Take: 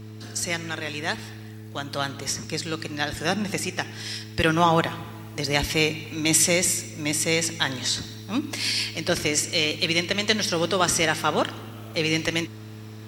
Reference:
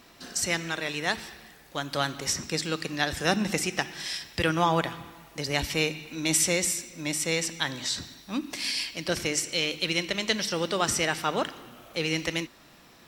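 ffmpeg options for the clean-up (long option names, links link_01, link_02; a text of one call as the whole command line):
ffmpeg -i in.wav -af "bandreject=frequency=107.9:width_type=h:width=4,bandreject=frequency=215.8:width_type=h:width=4,bandreject=frequency=323.7:width_type=h:width=4,bandreject=frequency=431.6:width_type=h:width=4,asetnsamples=nb_out_samples=441:pad=0,asendcmd='4.39 volume volume -4.5dB',volume=0dB" out.wav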